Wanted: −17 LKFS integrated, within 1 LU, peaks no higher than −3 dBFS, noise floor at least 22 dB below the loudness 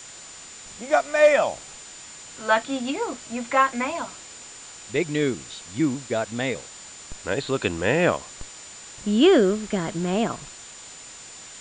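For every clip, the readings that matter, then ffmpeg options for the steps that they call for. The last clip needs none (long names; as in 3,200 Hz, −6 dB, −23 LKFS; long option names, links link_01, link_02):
interfering tone 7,100 Hz; level of the tone −43 dBFS; background noise floor −43 dBFS; target noise floor −46 dBFS; integrated loudness −23.5 LKFS; sample peak −7.0 dBFS; target loudness −17.0 LKFS
→ -af "bandreject=frequency=7100:width=30"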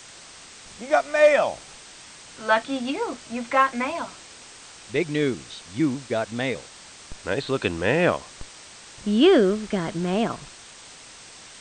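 interfering tone none found; background noise floor −45 dBFS; target noise floor −46 dBFS
→ -af "afftdn=noise_reduction=6:noise_floor=-45"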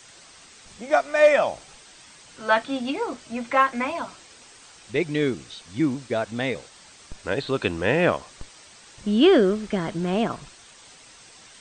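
background noise floor −50 dBFS; integrated loudness −23.5 LKFS; sample peak −7.0 dBFS; target loudness −17.0 LKFS
→ -af "volume=6.5dB,alimiter=limit=-3dB:level=0:latency=1"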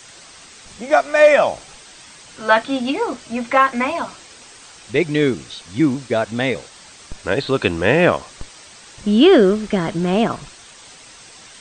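integrated loudness −17.5 LKFS; sample peak −3.0 dBFS; background noise floor −43 dBFS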